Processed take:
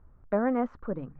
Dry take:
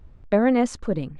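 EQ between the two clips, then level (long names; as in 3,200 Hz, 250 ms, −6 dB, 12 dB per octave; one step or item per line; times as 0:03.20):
low-pass with resonance 1,300 Hz, resonance Q 2.3
high-frequency loss of the air 57 metres
mains-hum notches 50/100/150 Hz
−8.5 dB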